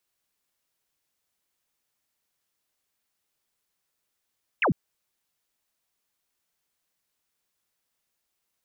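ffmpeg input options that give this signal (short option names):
-f lavfi -i "aevalsrc='0.112*clip(t/0.002,0,1)*clip((0.1-t)/0.002,0,1)*sin(2*PI*3000*0.1/log(120/3000)*(exp(log(120/3000)*t/0.1)-1))':d=0.1:s=44100"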